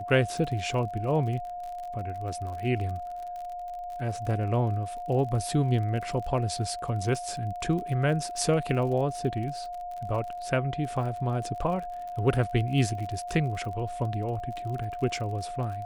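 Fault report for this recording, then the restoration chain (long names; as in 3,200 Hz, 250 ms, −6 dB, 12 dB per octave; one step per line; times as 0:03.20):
surface crackle 42 per second −36 dBFS
whistle 710 Hz −34 dBFS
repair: click removal
notch filter 710 Hz, Q 30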